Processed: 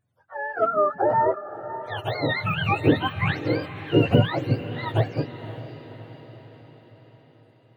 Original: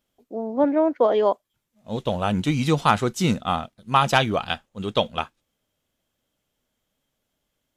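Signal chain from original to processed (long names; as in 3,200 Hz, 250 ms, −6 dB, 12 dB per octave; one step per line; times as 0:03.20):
frequency axis turned over on the octave scale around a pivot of 620 Hz
feedback delay with all-pass diffusion 545 ms, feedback 54%, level −13.5 dB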